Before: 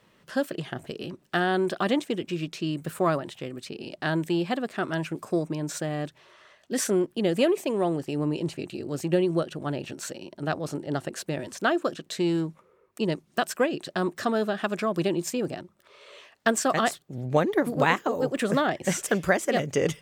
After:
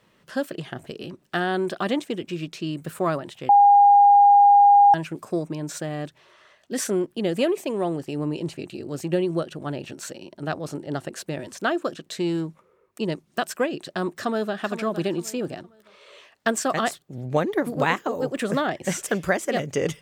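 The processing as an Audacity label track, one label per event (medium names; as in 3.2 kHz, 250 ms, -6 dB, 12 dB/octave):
3.490000	4.940000	bleep 811 Hz -10 dBFS
14.170000	14.620000	echo throw 460 ms, feedback 30%, level -10.5 dB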